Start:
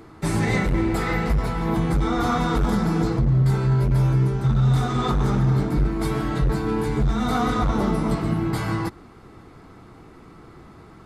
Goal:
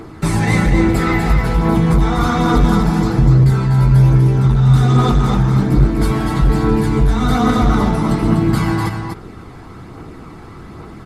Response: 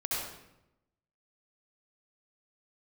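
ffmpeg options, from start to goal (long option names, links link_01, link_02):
-filter_complex "[0:a]asplit=2[link_01][link_02];[link_02]acompressor=threshold=-28dB:ratio=6,volume=0dB[link_03];[link_01][link_03]amix=inputs=2:normalize=0,aphaser=in_gain=1:out_gain=1:delay=1.3:decay=0.33:speed=1.2:type=triangular,aecho=1:1:246:0.531,volume=2.5dB"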